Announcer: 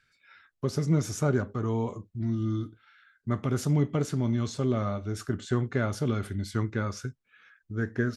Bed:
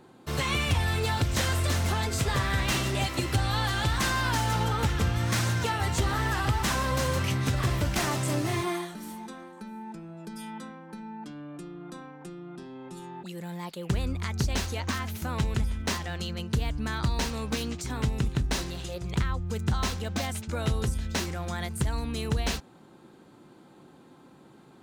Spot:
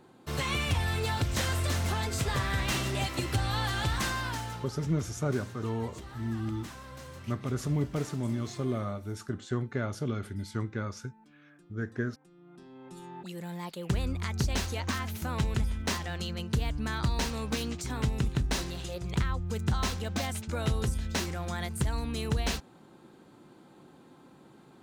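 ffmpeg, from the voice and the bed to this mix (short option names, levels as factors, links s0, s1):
-filter_complex "[0:a]adelay=4000,volume=0.596[s0];[1:a]volume=5.01,afade=t=out:st=3.94:d=0.76:silence=0.16788,afade=t=in:st=12.28:d=1.03:silence=0.141254[s1];[s0][s1]amix=inputs=2:normalize=0"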